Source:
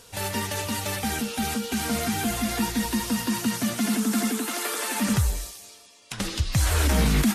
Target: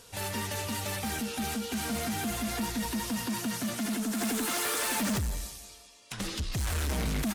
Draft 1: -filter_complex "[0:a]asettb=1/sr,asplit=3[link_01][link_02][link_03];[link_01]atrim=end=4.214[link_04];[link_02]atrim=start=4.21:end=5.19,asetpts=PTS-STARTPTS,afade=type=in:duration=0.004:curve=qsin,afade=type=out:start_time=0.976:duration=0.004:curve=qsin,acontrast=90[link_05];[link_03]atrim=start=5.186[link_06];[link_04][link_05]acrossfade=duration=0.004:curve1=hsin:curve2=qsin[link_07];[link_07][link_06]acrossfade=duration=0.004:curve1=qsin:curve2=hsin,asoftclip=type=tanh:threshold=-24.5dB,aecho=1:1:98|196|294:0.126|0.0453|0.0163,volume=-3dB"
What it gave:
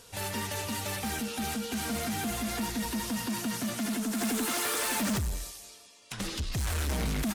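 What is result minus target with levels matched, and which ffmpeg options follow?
echo 75 ms early
-filter_complex "[0:a]asettb=1/sr,asplit=3[link_01][link_02][link_03];[link_01]atrim=end=4.214[link_04];[link_02]atrim=start=4.21:end=5.19,asetpts=PTS-STARTPTS,afade=type=in:duration=0.004:curve=qsin,afade=type=out:start_time=0.976:duration=0.004:curve=qsin,acontrast=90[link_05];[link_03]atrim=start=5.186[link_06];[link_04][link_05]acrossfade=duration=0.004:curve1=hsin:curve2=qsin[link_07];[link_07][link_06]acrossfade=duration=0.004:curve1=qsin:curve2=hsin,asoftclip=type=tanh:threshold=-24.5dB,aecho=1:1:173|346|519:0.126|0.0453|0.0163,volume=-3dB"

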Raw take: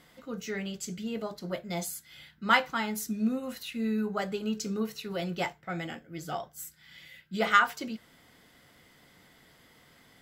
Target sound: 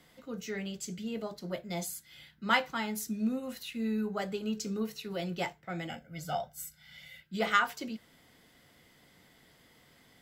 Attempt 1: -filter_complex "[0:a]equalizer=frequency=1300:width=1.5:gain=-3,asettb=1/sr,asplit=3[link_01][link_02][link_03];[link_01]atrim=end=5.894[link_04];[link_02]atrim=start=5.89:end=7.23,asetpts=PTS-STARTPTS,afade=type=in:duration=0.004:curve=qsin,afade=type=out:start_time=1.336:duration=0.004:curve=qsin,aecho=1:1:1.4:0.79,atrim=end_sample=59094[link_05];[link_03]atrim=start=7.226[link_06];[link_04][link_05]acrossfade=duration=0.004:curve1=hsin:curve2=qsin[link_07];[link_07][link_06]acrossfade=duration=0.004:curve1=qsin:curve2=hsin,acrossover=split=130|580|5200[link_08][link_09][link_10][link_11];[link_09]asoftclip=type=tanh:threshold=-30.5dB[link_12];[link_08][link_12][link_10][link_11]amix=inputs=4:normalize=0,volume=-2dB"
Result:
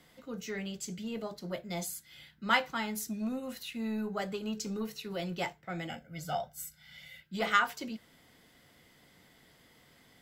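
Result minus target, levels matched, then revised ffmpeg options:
soft clipping: distortion +16 dB
-filter_complex "[0:a]equalizer=frequency=1300:width=1.5:gain=-3,asettb=1/sr,asplit=3[link_01][link_02][link_03];[link_01]atrim=end=5.894[link_04];[link_02]atrim=start=5.89:end=7.23,asetpts=PTS-STARTPTS,afade=type=in:duration=0.004:curve=qsin,afade=type=out:start_time=1.336:duration=0.004:curve=qsin,aecho=1:1:1.4:0.79,atrim=end_sample=59094[link_05];[link_03]atrim=start=7.226[link_06];[link_04][link_05]acrossfade=duration=0.004:curve1=hsin:curve2=qsin[link_07];[link_07][link_06]acrossfade=duration=0.004:curve1=qsin:curve2=hsin,acrossover=split=130|580|5200[link_08][link_09][link_10][link_11];[link_09]asoftclip=type=tanh:threshold=-19dB[link_12];[link_08][link_12][link_10][link_11]amix=inputs=4:normalize=0,volume=-2dB"

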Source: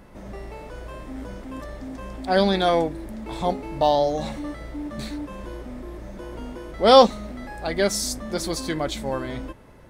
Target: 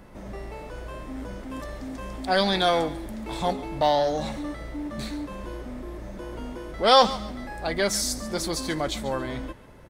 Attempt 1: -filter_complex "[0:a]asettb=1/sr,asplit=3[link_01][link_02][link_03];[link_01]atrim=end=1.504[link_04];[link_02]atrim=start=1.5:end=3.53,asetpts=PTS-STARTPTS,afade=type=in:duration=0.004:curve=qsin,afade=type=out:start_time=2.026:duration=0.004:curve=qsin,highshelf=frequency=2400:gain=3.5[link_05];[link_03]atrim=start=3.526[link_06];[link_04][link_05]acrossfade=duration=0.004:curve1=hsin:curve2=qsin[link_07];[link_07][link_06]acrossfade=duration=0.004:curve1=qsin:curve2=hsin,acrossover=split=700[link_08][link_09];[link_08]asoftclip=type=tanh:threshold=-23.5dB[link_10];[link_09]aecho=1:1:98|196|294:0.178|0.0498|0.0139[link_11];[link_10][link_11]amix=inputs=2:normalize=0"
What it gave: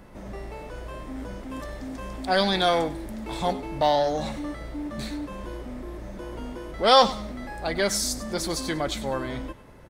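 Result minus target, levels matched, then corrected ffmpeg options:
echo 42 ms early
-filter_complex "[0:a]asettb=1/sr,asplit=3[link_01][link_02][link_03];[link_01]atrim=end=1.504[link_04];[link_02]atrim=start=1.5:end=3.53,asetpts=PTS-STARTPTS,afade=type=in:duration=0.004:curve=qsin,afade=type=out:start_time=2.026:duration=0.004:curve=qsin,highshelf=frequency=2400:gain=3.5[link_05];[link_03]atrim=start=3.526[link_06];[link_04][link_05]acrossfade=duration=0.004:curve1=hsin:curve2=qsin[link_07];[link_07][link_06]acrossfade=duration=0.004:curve1=qsin:curve2=hsin,acrossover=split=700[link_08][link_09];[link_08]asoftclip=type=tanh:threshold=-23.5dB[link_10];[link_09]aecho=1:1:140|280|420:0.178|0.0498|0.0139[link_11];[link_10][link_11]amix=inputs=2:normalize=0"

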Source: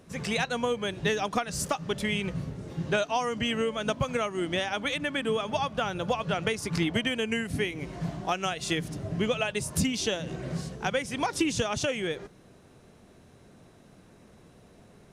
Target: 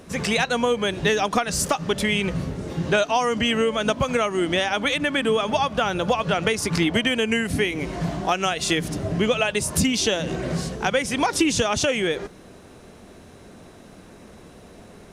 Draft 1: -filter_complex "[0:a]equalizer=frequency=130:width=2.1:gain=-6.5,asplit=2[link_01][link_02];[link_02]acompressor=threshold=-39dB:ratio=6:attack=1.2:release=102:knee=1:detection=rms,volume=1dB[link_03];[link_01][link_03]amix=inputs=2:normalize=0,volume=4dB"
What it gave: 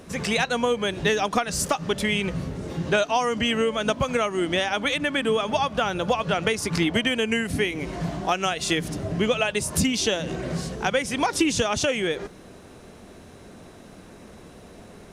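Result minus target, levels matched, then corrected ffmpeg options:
downward compressor: peak gain reduction +7 dB
-filter_complex "[0:a]equalizer=frequency=130:width=2.1:gain=-6.5,asplit=2[link_01][link_02];[link_02]acompressor=threshold=-30.5dB:ratio=6:attack=1.2:release=102:knee=1:detection=rms,volume=1dB[link_03];[link_01][link_03]amix=inputs=2:normalize=0,volume=4dB"

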